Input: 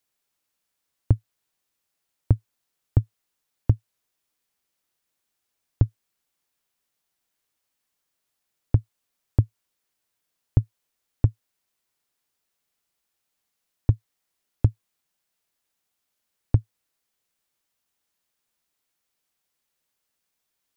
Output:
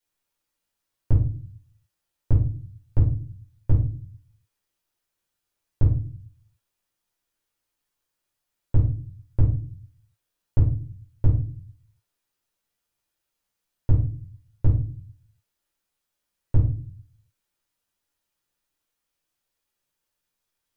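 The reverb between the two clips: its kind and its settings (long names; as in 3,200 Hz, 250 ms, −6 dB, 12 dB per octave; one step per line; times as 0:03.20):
rectangular room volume 270 cubic metres, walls furnished, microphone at 4.7 metres
level −9.5 dB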